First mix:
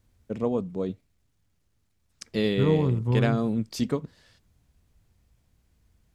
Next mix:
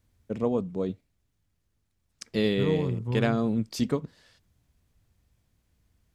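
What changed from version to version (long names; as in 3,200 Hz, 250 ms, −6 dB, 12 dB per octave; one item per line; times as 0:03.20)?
second voice −5.5 dB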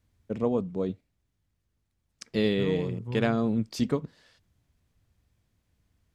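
first voice: add high-shelf EQ 7,200 Hz −5.5 dB
second voice −5.0 dB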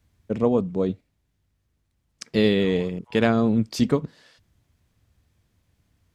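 first voice +6.0 dB
second voice: add Butterworth high-pass 640 Hz 48 dB per octave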